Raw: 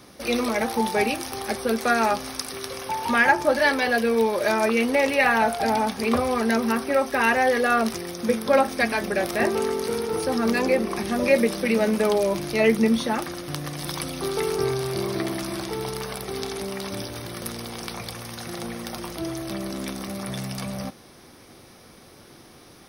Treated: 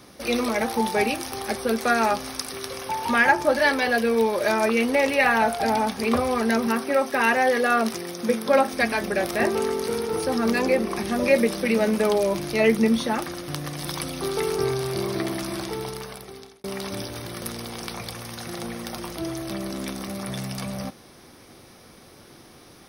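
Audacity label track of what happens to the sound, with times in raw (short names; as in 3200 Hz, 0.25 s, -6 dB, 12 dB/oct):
6.670000	8.730000	HPF 130 Hz
15.660000	16.640000	fade out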